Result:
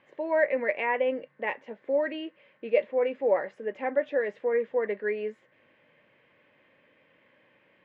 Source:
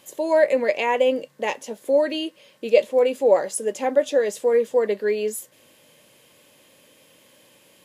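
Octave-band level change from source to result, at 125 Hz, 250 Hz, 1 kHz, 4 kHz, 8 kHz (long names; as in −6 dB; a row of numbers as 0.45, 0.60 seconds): can't be measured, −8.0 dB, −6.5 dB, below −10 dB, below −40 dB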